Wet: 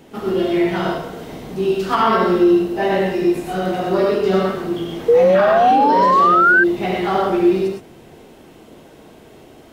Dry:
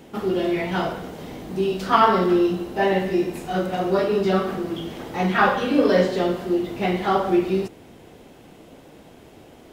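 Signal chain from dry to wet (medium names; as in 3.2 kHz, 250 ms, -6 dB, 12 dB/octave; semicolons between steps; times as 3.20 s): gated-style reverb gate 140 ms rising, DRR -0.5 dB; painted sound rise, 5.08–6.64 s, 460–1600 Hz -10 dBFS; peak limiter -6 dBFS, peak gain reduction 6.5 dB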